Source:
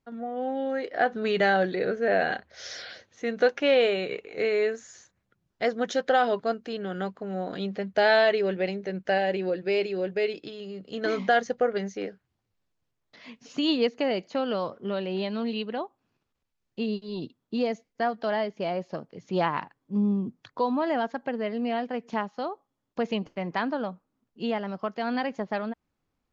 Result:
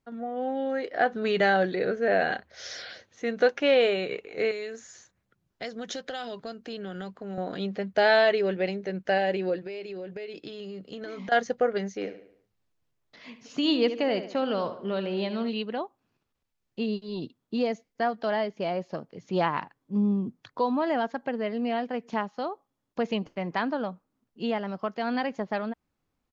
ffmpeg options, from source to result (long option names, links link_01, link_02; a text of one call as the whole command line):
ffmpeg -i in.wav -filter_complex "[0:a]asettb=1/sr,asplit=3[link_01][link_02][link_03];[link_01]atrim=end=4.514[link_04];[link_02]atrim=start=4.51:end=7.38,asetpts=PTS-STARTPTS,afade=type=in:duration=0.004:curve=qsin,afade=type=out:start_time=2.866:duration=0.004:curve=qsin,acrossover=split=150|3000[link_05][link_06][link_07];[link_06]acompressor=threshold=-34dB:ratio=6:attack=3.2:release=140:knee=2.83:detection=peak[link_08];[link_05][link_08][link_07]amix=inputs=3:normalize=0[link_09];[link_03]atrim=start=7.376[link_10];[link_04][link_09]acrossfade=duration=0.004:curve1=hsin:curve2=qsin[link_11];[link_11][link_10]acrossfade=duration=0.004:curve1=qsin:curve2=hsin,asettb=1/sr,asplit=3[link_12][link_13][link_14];[link_12]atrim=end=9.584[link_15];[link_13]atrim=start=9.58:end=11.32,asetpts=PTS-STARTPTS,afade=type=in:duration=0.004:curve=qsin,afade=type=out:start_time=1.736:duration=0.004:curve=qsin,acompressor=threshold=-34dB:ratio=8:attack=3.2:release=140:knee=1:detection=peak[link_16];[link_14]atrim=start=11.316[link_17];[link_15][link_16]acrossfade=duration=0.004:curve1=hsin:curve2=qsin[link_18];[link_18][link_17]acrossfade=duration=0.004:curve1=qsin:curve2=hsin,asplit=3[link_19][link_20][link_21];[link_19]afade=type=out:start_time=12.01:duration=0.02[link_22];[link_20]asplit=2[link_23][link_24];[link_24]adelay=72,lowpass=frequency=4300:poles=1,volume=-11dB,asplit=2[link_25][link_26];[link_26]adelay=72,lowpass=frequency=4300:poles=1,volume=0.47,asplit=2[link_27][link_28];[link_28]adelay=72,lowpass=frequency=4300:poles=1,volume=0.47,asplit=2[link_29][link_30];[link_30]adelay=72,lowpass=frequency=4300:poles=1,volume=0.47,asplit=2[link_31][link_32];[link_32]adelay=72,lowpass=frequency=4300:poles=1,volume=0.47[link_33];[link_23][link_25][link_27][link_29][link_31][link_33]amix=inputs=6:normalize=0,afade=type=in:start_time=12.01:duration=0.02,afade=type=out:start_time=15.48:duration=0.02[link_34];[link_21]afade=type=in:start_time=15.48:duration=0.02[link_35];[link_22][link_34][link_35]amix=inputs=3:normalize=0" out.wav